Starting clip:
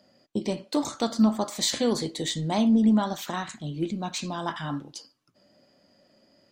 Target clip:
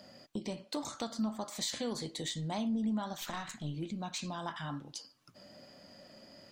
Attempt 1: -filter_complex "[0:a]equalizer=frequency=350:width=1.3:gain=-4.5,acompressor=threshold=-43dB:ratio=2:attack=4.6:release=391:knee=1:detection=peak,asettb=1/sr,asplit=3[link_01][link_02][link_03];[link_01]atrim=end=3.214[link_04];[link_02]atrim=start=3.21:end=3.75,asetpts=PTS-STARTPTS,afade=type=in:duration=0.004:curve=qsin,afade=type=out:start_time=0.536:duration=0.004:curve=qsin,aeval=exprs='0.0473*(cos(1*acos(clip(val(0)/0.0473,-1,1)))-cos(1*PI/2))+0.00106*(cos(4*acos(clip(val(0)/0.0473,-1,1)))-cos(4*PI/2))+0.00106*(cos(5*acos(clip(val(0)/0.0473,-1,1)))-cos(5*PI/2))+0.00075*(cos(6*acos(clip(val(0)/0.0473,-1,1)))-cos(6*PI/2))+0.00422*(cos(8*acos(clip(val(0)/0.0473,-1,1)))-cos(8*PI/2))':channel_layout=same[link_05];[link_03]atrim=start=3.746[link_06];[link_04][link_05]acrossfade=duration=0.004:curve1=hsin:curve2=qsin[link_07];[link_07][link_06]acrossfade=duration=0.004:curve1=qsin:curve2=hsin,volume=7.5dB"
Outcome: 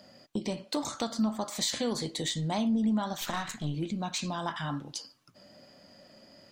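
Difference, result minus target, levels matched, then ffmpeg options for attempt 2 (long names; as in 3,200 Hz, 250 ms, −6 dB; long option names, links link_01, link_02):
downward compressor: peak gain reduction −6 dB
-filter_complex "[0:a]equalizer=frequency=350:width=1.3:gain=-4.5,acompressor=threshold=-54.5dB:ratio=2:attack=4.6:release=391:knee=1:detection=peak,asettb=1/sr,asplit=3[link_01][link_02][link_03];[link_01]atrim=end=3.214[link_04];[link_02]atrim=start=3.21:end=3.75,asetpts=PTS-STARTPTS,afade=type=in:duration=0.004:curve=qsin,afade=type=out:start_time=0.536:duration=0.004:curve=qsin,aeval=exprs='0.0473*(cos(1*acos(clip(val(0)/0.0473,-1,1)))-cos(1*PI/2))+0.00106*(cos(4*acos(clip(val(0)/0.0473,-1,1)))-cos(4*PI/2))+0.00106*(cos(5*acos(clip(val(0)/0.0473,-1,1)))-cos(5*PI/2))+0.00075*(cos(6*acos(clip(val(0)/0.0473,-1,1)))-cos(6*PI/2))+0.00422*(cos(8*acos(clip(val(0)/0.0473,-1,1)))-cos(8*PI/2))':channel_layout=same[link_05];[link_03]atrim=start=3.746[link_06];[link_04][link_05]acrossfade=duration=0.004:curve1=hsin:curve2=qsin[link_07];[link_07][link_06]acrossfade=duration=0.004:curve1=qsin:curve2=hsin,volume=7.5dB"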